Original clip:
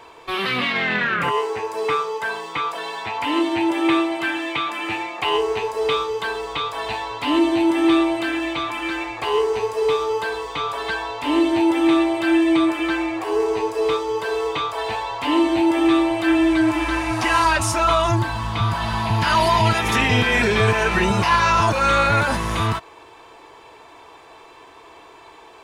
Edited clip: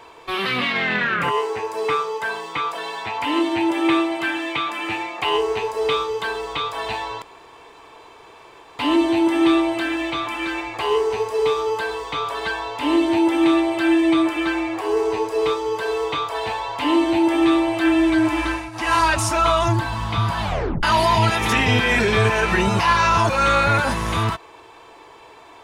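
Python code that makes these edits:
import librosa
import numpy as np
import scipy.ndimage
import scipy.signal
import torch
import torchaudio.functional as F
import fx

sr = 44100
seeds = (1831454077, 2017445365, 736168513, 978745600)

y = fx.edit(x, sr, fx.insert_room_tone(at_s=7.22, length_s=1.57),
    fx.fade_down_up(start_s=16.9, length_s=0.48, db=-15.5, fade_s=0.24),
    fx.tape_stop(start_s=18.85, length_s=0.41), tone=tone)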